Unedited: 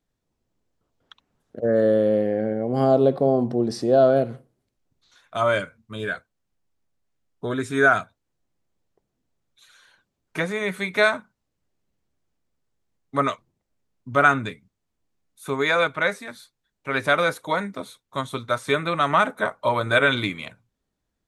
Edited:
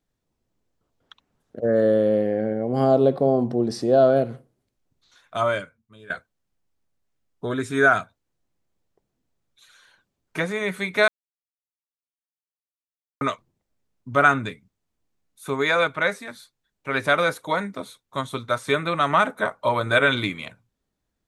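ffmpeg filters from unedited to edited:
-filter_complex "[0:a]asplit=4[s0][s1][s2][s3];[s0]atrim=end=6.1,asetpts=PTS-STARTPTS,afade=t=out:st=5.4:d=0.7:c=qua:silence=0.133352[s4];[s1]atrim=start=6.1:end=11.08,asetpts=PTS-STARTPTS,afade=t=in:d=0.004:c=hsin:silence=0.133352,afade=t=out:st=4.976:d=0.004:c=hsin[s5];[s2]atrim=start=11.08:end=13.21,asetpts=PTS-STARTPTS,volume=0[s6];[s3]atrim=start=13.21,asetpts=PTS-STARTPTS,afade=t=in:d=0.004:c=hsin[s7];[s4][s5][s6][s7]concat=n=4:v=0:a=1"

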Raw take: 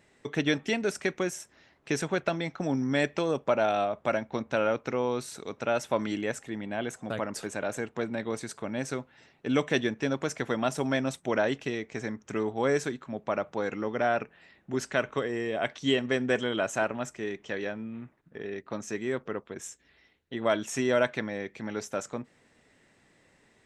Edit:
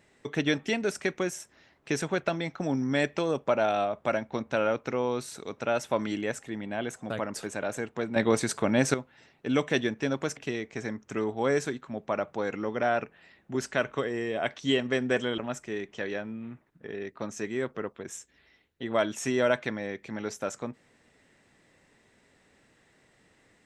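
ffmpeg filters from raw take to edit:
-filter_complex "[0:a]asplit=5[s0][s1][s2][s3][s4];[s0]atrim=end=8.162[s5];[s1]atrim=start=8.158:end=8.942,asetpts=PTS-STARTPTS,volume=2.82[s6];[s2]atrim=start=8.938:end=10.372[s7];[s3]atrim=start=11.558:end=16.572[s8];[s4]atrim=start=16.888[s9];[s5][s6]acrossfade=d=0.004:c1=hsin:c2=hsin[s10];[s10][s7]acrossfade=d=0.004:c1=hsin:c2=hsin[s11];[s11][s8]acrossfade=d=0.004:c1=hsin:c2=hsin[s12];[s12][s9]acrossfade=d=0.004:c1=hsin:c2=hsin"

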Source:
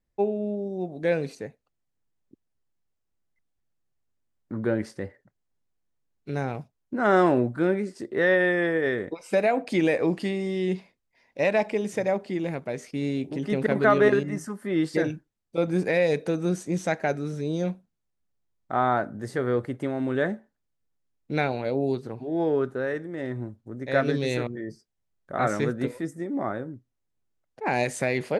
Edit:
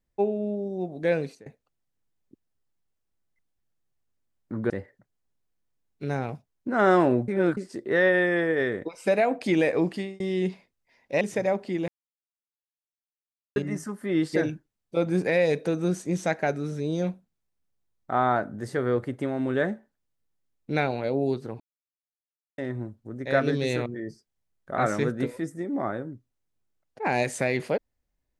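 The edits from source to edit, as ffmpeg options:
-filter_complex "[0:a]asplit=11[s0][s1][s2][s3][s4][s5][s6][s7][s8][s9][s10];[s0]atrim=end=1.46,asetpts=PTS-STARTPTS,afade=t=out:st=1.2:d=0.26:silence=0.0749894[s11];[s1]atrim=start=1.46:end=4.702,asetpts=PTS-STARTPTS,afade=t=in:d=0.004:c=hsin:silence=0.0749894[s12];[s2]atrim=start=4.958:end=7.542[s13];[s3]atrim=start=7.538:end=7.832,asetpts=PTS-STARTPTS,areverse[s14];[s4]atrim=start=7.828:end=10.46,asetpts=PTS-STARTPTS,afade=t=out:st=2.222:d=0.41:c=qsin[s15];[s5]atrim=start=10.46:end=11.472,asetpts=PTS-STARTPTS,afade=t=in:d=0.004:c=hsin[s16];[s6]atrim=start=11.818:end=12.49,asetpts=PTS-STARTPTS,afade=t=out:st=0.668:d=0.004:c=hsin[s17];[s7]atrim=start=12.49:end=14.17,asetpts=PTS-STARTPTS,volume=0[s18];[s8]atrim=start=14.17:end=22.21,asetpts=PTS-STARTPTS,afade=t=in:d=0.004:c=hsin,afade=t=out:st=8.036:d=0.004:c=hsin[s19];[s9]atrim=start=22.21:end=23.19,asetpts=PTS-STARTPTS,volume=0[s20];[s10]atrim=start=23.19,asetpts=PTS-STARTPTS,afade=t=in:d=0.004:c=hsin[s21];[s11][s12]concat=n=2:v=0:a=1[s22];[s22][s13]acrossfade=d=0.004:c1=hsin:c2=hsin[s23];[s23][s14]acrossfade=d=0.004:c1=hsin:c2=hsin[s24];[s15][s16]concat=n=2:v=0:a=1[s25];[s24][s25]acrossfade=d=0.004:c1=hsin:c2=hsin[s26];[s17][s18][s19][s20][s21]concat=n=5:v=0:a=1[s27];[s26][s27]acrossfade=d=0.004:c1=hsin:c2=hsin"

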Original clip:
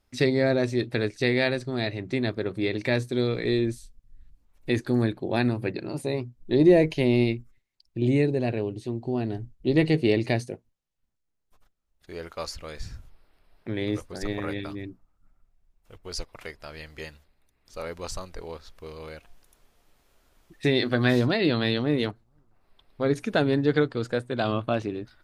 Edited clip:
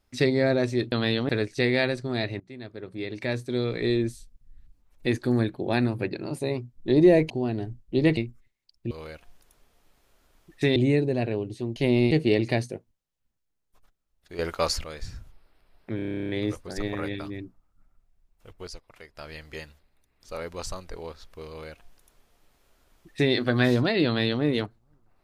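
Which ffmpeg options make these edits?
-filter_complex "[0:a]asplit=25[s0][s1][s2][s3][s4][s5][s6][s7][s8][s9][s10][s11][s12][s13][s14][s15][s16][s17][s18][s19][s20][s21][s22][s23][s24];[s0]atrim=end=0.922[s25];[s1]atrim=start=21.508:end=21.882[s26];[s2]atrim=start=0.918:end=2.03,asetpts=PTS-STARTPTS,afade=t=out:st=1.108:d=0.004:c=hsin:silence=0.0841395[s27];[s3]atrim=start=2.03:end=6.932,asetpts=PTS-STARTPTS,afade=t=in:d=1.53:silence=0.0841395[s28];[s4]atrim=start=9.018:end=9.892[s29];[s5]atrim=start=7.278:end=8.022[s30];[s6]atrim=start=18.928:end=20.782[s31];[s7]atrim=start=8.018:end=9.022[s32];[s8]atrim=start=6.928:end=7.282[s33];[s9]atrim=start=9.888:end=12.172[s34];[s10]atrim=start=12.168:end=12.622,asetpts=PTS-STARTPTS,volume=2.66[s35];[s11]atrim=start=12.618:end=13.772[s36];[s12]atrim=start=13.738:end=13.772[s37];[s13]atrim=start=13.738:end=13.772[s38];[s14]atrim=start=13.738:end=13.772[s39];[s15]atrim=start=13.738:end=13.772[s40];[s16]atrim=start=13.738:end=13.772[s41];[s17]atrim=start=13.738:end=13.772[s42];[s18]atrim=start=13.738:end=13.772[s43];[s19]atrim=start=13.738:end=13.772[s44];[s20]atrim=start=13.738:end=13.772[s45];[s21]atrim=start=13.738:end=13.772[s46];[s22]atrim=start=13.738:end=16.122[s47];[s23]atrim=start=16.118:end=16.622,asetpts=PTS-STARTPTS,volume=0.376[s48];[s24]atrim=start=16.618[s49];[s25][s26]acrossfade=d=0.004:c1=hsin:c2=hsin[s50];[s27][s28]concat=n=2:v=0:a=1[s51];[s50][s51]acrossfade=d=0.004:c1=hsin:c2=hsin[s52];[s52][s29]acrossfade=d=0.004:c1=hsin:c2=hsin[s53];[s53][s30]acrossfade=d=0.004:c1=hsin:c2=hsin[s54];[s54][s31]acrossfade=d=0.004:c1=hsin:c2=hsin[s55];[s55][s32]acrossfade=d=0.004:c1=hsin:c2=hsin[s56];[s56][s33]acrossfade=d=0.004:c1=hsin:c2=hsin[s57];[s57][s34]acrossfade=d=0.004:c1=hsin:c2=hsin[s58];[s58][s35]acrossfade=d=0.004:c1=hsin:c2=hsin[s59];[s59][s36]acrossfade=d=0.004:c1=hsin:c2=hsin[s60];[s60][s37]acrossfade=d=0.004:c1=hsin:c2=hsin[s61];[s61][s38]acrossfade=d=0.004:c1=hsin:c2=hsin[s62];[s62][s39]acrossfade=d=0.004:c1=hsin:c2=hsin[s63];[s63][s40]acrossfade=d=0.004:c1=hsin:c2=hsin[s64];[s64][s41]acrossfade=d=0.004:c1=hsin:c2=hsin[s65];[s65][s42]acrossfade=d=0.004:c1=hsin:c2=hsin[s66];[s66][s43]acrossfade=d=0.004:c1=hsin:c2=hsin[s67];[s67][s44]acrossfade=d=0.004:c1=hsin:c2=hsin[s68];[s68][s45]acrossfade=d=0.004:c1=hsin:c2=hsin[s69];[s69][s46]acrossfade=d=0.004:c1=hsin:c2=hsin[s70];[s70][s47]acrossfade=d=0.004:c1=hsin:c2=hsin[s71];[s71][s48]acrossfade=d=0.004:c1=hsin:c2=hsin[s72];[s72][s49]acrossfade=d=0.004:c1=hsin:c2=hsin"

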